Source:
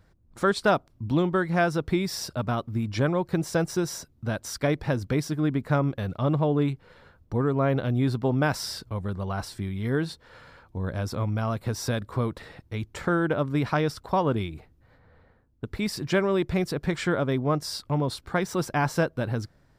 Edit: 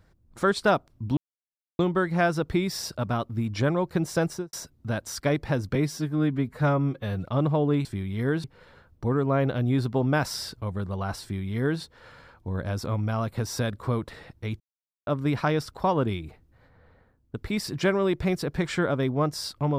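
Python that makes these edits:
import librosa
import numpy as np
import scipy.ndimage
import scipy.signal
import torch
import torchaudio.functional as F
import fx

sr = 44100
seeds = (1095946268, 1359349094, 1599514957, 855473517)

y = fx.studio_fade_out(x, sr, start_s=3.66, length_s=0.25)
y = fx.edit(y, sr, fx.insert_silence(at_s=1.17, length_s=0.62),
    fx.stretch_span(start_s=5.13, length_s=1.0, factor=1.5),
    fx.duplicate(start_s=9.51, length_s=0.59, to_s=6.73),
    fx.silence(start_s=12.89, length_s=0.47), tone=tone)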